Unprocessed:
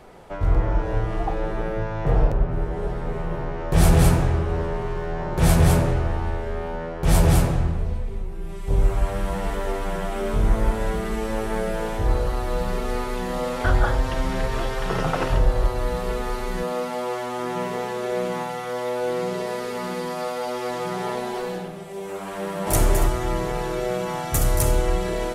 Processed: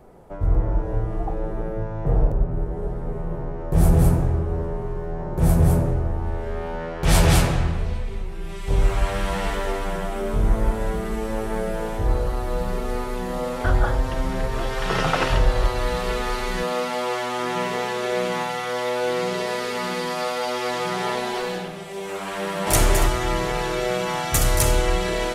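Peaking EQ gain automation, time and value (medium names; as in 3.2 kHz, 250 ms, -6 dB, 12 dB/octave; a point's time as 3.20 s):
peaking EQ 3.3 kHz 2.9 oct
6.16 s -13.5 dB
6.45 s -2.5 dB
7.23 s +8.5 dB
9.42 s +8.5 dB
10.26 s -3 dB
14.53 s -3 dB
14.97 s +8 dB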